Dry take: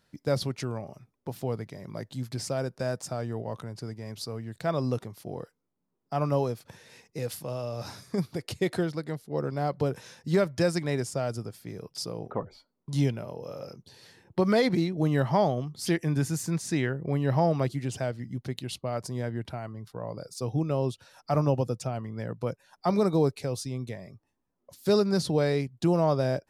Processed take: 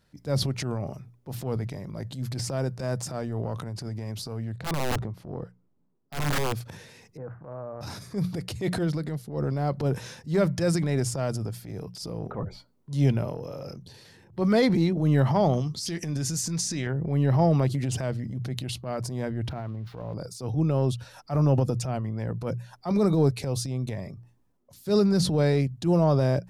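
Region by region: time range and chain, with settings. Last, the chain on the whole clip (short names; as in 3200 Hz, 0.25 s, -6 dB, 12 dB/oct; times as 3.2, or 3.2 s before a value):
4.52–6.53 LPF 1300 Hz 6 dB/oct + wrapped overs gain 23 dB
7.17–7.81 elliptic low-pass 1500 Hz, stop band 60 dB + low shelf 490 Hz -9 dB
15.53–16.87 bell 5600 Hz +12 dB 1.4 oct + compressor, threshold -28 dBFS + doubler 17 ms -14 dB
19.49–20.14 switching spikes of -36 dBFS + air absorption 320 m
whole clip: low shelf 200 Hz +9.5 dB; notches 60/120/180 Hz; transient shaper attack -9 dB, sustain +6 dB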